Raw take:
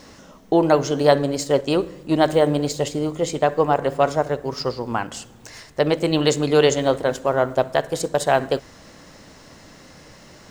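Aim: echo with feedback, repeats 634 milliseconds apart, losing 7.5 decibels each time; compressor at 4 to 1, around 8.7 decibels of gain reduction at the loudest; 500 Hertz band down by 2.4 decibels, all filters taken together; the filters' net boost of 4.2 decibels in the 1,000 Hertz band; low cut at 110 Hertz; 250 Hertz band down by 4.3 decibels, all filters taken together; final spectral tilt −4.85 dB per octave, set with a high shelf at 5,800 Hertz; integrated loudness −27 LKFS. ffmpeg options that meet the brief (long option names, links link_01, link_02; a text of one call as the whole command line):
ffmpeg -i in.wav -af "highpass=110,equalizer=frequency=250:width_type=o:gain=-4.5,equalizer=frequency=500:width_type=o:gain=-4.5,equalizer=frequency=1000:width_type=o:gain=8.5,highshelf=frequency=5800:gain=-7.5,acompressor=threshold=-20dB:ratio=4,aecho=1:1:634|1268|1902|2536|3170:0.422|0.177|0.0744|0.0312|0.0131,volume=-1dB" out.wav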